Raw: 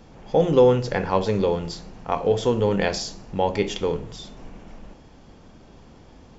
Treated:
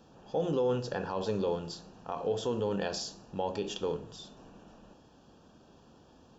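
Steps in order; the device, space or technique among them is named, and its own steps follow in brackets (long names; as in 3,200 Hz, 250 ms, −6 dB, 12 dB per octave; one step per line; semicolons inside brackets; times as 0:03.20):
PA system with an anti-feedback notch (high-pass filter 150 Hz 6 dB per octave; Butterworth band-reject 2,100 Hz, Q 2.9; brickwall limiter −14 dBFS, peak gain reduction 8 dB)
level −7.5 dB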